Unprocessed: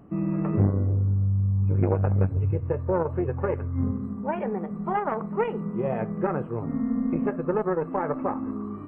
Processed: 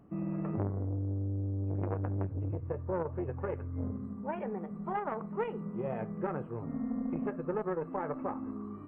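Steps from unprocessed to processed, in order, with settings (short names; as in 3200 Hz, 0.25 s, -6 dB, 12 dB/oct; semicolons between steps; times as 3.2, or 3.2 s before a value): 0.53–3.18 LPF 2300 Hz; core saturation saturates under 410 Hz; gain -8 dB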